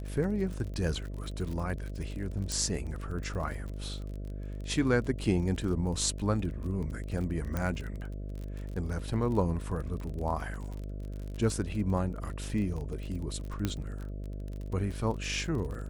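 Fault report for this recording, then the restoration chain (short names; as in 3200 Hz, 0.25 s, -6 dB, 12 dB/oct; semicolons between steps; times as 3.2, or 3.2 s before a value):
buzz 50 Hz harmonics 13 -38 dBFS
crackle 39/s -37 dBFS
2.52 pop
7.57 pop -19 dBFS
13.65 pop -16 dBFS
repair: de-click; de-hum 50 Hz, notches 13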